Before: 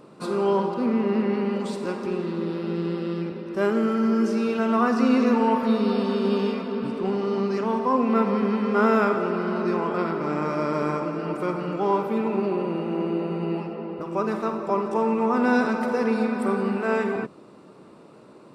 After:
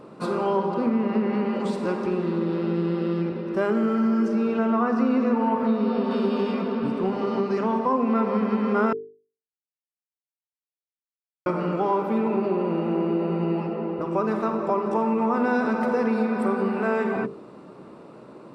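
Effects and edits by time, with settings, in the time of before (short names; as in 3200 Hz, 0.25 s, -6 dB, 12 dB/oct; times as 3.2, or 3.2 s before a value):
4.28–6.11 high shelf 3400 Hz -8.5 dB
8.93–11.46 mute
whole clip: high shelf 3000 Hz -9 dB; notches 50/100/150/200/250/300/350/400/450 Hz; compressor 2.5:1, threshold -26 dBFS; gain +5 dB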